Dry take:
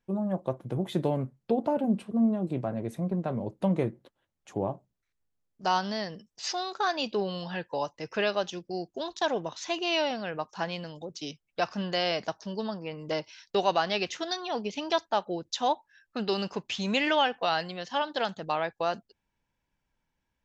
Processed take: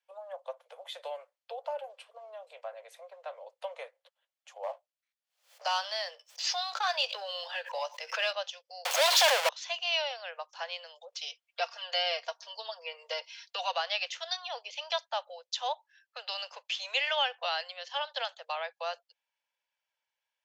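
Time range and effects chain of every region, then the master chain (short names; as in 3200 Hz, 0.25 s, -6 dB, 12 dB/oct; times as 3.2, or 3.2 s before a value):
4.63–8.33 sample leveller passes 1 + doubler 17 ms -13 dB + backwards sustainer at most 120 dB/s
8.85–9.49 zero-crossing step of -34 dBFS + sample leveller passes 5
11.12–13.72 comb 4.3 ms, depth 70% + three-band squash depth 40%
whole clip: steep high-pass 500 Hz 96 dB/oct; bell 3400 Hz +9 dB 1.6 oct; notch 3800 Hz, Q 21; gain -7.5 dB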